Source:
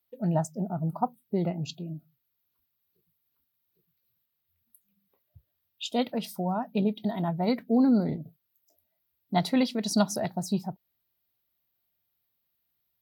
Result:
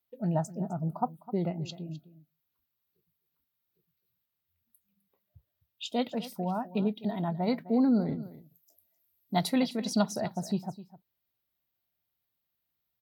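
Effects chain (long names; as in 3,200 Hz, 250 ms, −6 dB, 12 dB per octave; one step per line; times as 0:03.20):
parametric band 11,000 Hz −4 dB 1.4 octaves, from 0:08.23 +9.5 dB, from 0:09.58 −5 dB
single-tap delay 257 ms −16.5 dB
level −2.5 dB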